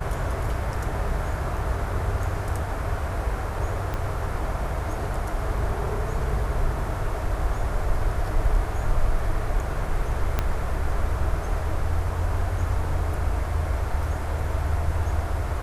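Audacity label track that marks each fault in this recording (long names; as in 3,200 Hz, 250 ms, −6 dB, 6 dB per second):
3.940000	3.940000	click −16 dBFS
10.390000	10.390000	click −9 dBFS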